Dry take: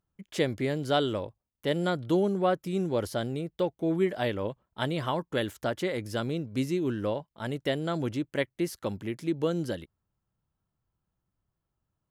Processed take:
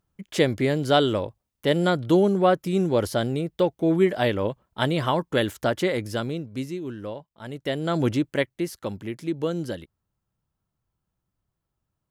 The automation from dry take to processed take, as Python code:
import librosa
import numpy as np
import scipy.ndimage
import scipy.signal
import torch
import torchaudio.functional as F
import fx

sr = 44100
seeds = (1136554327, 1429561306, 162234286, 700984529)

y = fx.gain(x, sr, db=fx.line((5.91, 6.5), (6.82, -4.0), (7.44, -4.0), (8.08, 9.0), (8.66, 1.5)))